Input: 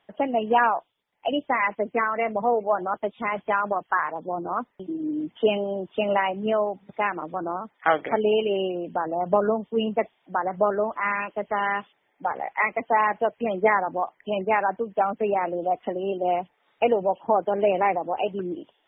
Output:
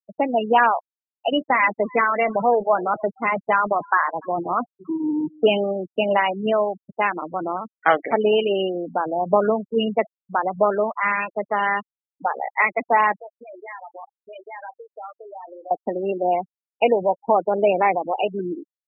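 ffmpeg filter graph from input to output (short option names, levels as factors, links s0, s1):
-filter_complex "[0:a]asettb=1/sr,asplit=3[s0][s1][s2];[s0]atrim=end=1.304[s3];[s1]atrim=start=1.3:end=5.72,asetpts=PTS-STARTPTS,afade=t=in:d=0.004:c=qsin,afade=t=out:st=4.416:d=0.004:c=qsin,aeval=exprs='val(0)+0.5*0.0251*sgn(val(0))':c=same,agate=range=0.224:threshold=0.0316:ratio=16:release=100:detection=peak,aecho=1:1:292:0.075,atrim=end_sample=194922[s4];[s2]atrim=start=5.716[s5];[s3][s4]acrossfade=d=0.004:c1=hsin:c2=qsin[s6];[s6][s5]acrossfade=d=0.004:c1=qsin:c2=hsin,asettb=1/sr,asplit=3[s7][s8][s9];[s7]atrim=end=13.194[s10];[s8]atrim=start=13.19:end=15.71,asetpts=PTS-STARTPTS,afade=t=in:d=0.004:c=qsin,afade=t=out:st=2.516:d=0.004:c=qsin,acompressor=threshold=0.0398:ratio=20:attack=3.2:release=140:knee=1:detection=peak,highpass=f=1300:p=1,asplit=2[s11][s12];[s12]adelay=31,volume=0.335[s13];[s11][s13]amix=inputs=2:normalize=0,atrim=end_sample=111132[s14];[s9]atrim=start=15.706[s15];[s10][s14]acrossfade=d=0.004:c1=hsin:c2=qsin[s16];[s16][s15]acrossfade=d=0.004:c1=qsin:c2=hsin,afftfilt=real='re*gte(hypot(re,im),0.0398)':imag='im*gte(hypot(re,im),0.0398)':win_size=1024:overlap=0.75,highshelf=f=3000:g=6,volume=1.41"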